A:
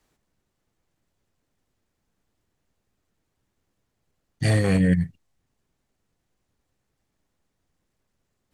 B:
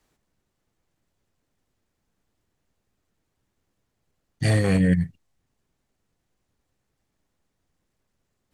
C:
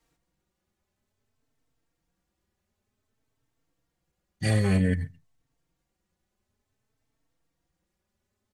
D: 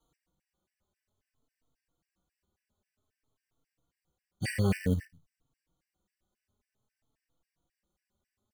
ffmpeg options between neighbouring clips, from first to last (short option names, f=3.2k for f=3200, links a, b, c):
-af anull
-filter_complex "[0:a]asplit=2[a][b];[b]adelay=134.1,volume=-26dB,highshelf=f=4k:g=-3.02[c];[a][c]amix=inputs=2:normalize=0,asplit=2[d][e];[e]adelay=3.9,afreqshift=0.54[f];[d][f]amix=inputs=2:normalize=1"
-af "acrusher=bits=6:mode=log:mix=0:aa=0.000001,afftfilt=real='re*gt(sin(2*PI*3.7*pts/sr)*(1-2*mod(floor(b*sr/1024/1500),2)),0)':imag='im*gt(sin(2*PI*3.7*pts/sr)*(1-2*mod(floor(b*sr/1024/1500),2)),0)':win_size=1024:overlap=0.75,volume=-1.5dB"